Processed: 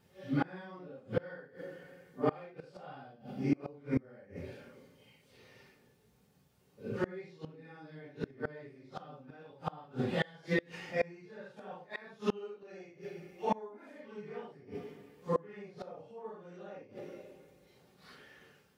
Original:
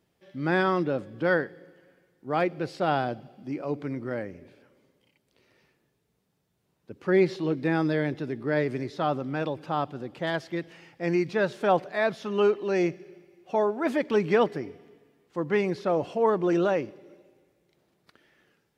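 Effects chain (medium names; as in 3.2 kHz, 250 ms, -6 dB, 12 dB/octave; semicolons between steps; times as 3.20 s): phase randomisation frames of 200 ms; comb of notches 330 Hz; inverted gate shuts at -25 dBFS, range -29 dB; trim +7 dB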